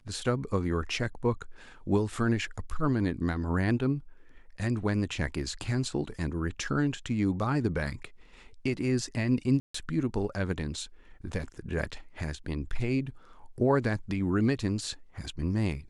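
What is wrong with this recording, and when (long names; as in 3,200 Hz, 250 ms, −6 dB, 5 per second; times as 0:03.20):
0:09.60–0:09.74: drop-out 144 ms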